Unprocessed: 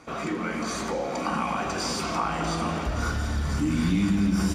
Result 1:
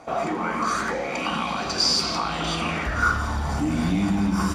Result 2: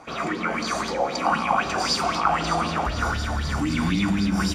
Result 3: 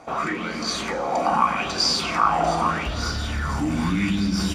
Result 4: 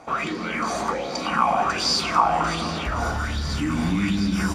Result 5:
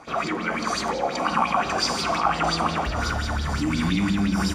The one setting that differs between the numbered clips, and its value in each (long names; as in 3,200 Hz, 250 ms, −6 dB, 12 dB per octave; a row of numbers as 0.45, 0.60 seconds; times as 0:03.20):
auto-filter bell, speed: 0.26, 3.9, 0.81, 1.3, 5.7 Hertz